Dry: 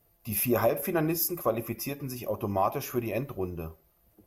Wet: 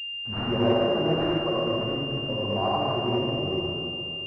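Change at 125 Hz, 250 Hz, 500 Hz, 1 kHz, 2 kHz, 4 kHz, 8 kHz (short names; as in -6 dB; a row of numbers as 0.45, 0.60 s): +4.5 dB, +4.5 dB, +4.0 dB, +3.0 dB, +9.5 dB, n/a, under -25 dB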